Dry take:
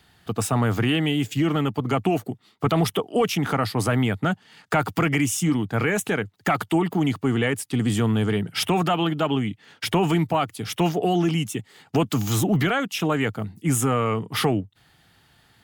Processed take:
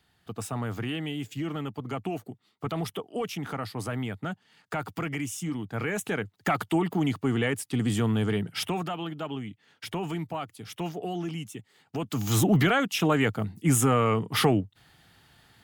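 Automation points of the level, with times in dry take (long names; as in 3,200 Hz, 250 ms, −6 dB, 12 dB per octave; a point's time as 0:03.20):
0:05.51 −10.5 dB
0:06.33 −4 dB
0:08.44 −4 dB
0:08.94 −11.5 dB
0:11.98 −11.5 dB
0:12.38 −0.5 dB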